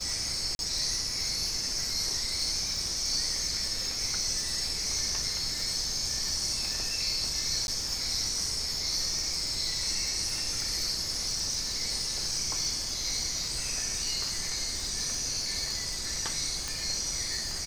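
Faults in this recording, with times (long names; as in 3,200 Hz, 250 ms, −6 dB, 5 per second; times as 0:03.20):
surface crackle 180 per second −35 dBFS
0:00.55–0:00.59: drop-out 41 ms
0:07.67–0:07.68: drop-out 11 ms
0:16.68: click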